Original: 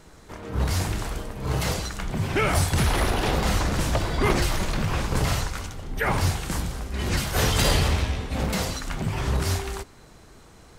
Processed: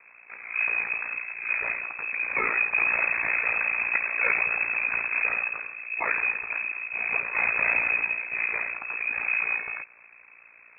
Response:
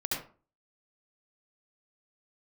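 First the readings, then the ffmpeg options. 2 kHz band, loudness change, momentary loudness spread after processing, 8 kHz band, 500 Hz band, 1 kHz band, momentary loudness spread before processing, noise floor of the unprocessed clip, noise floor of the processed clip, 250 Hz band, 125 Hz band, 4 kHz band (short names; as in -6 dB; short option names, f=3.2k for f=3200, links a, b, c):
+8.5 dB, +0.5 dB, 8 LU, under -40 dB, -11.5 dB, -5.5 dB, 10 LU, -50 dBFS, -53 dBFS, -21.0 dB, under -30 dB, under -40 dB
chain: -af "lowpass=f=2.2k:t=q:w=0.5098,lowpass=f=2.2k:t=q:w=0.6013,lowpass=f=2.2k:t=q:w=0.9,lowpass=f=2.2k:t=q:w=2.563,afreqshift=-2600,aeval=exprs='val(0)*sin(2*PI*29*n/s)':c=same"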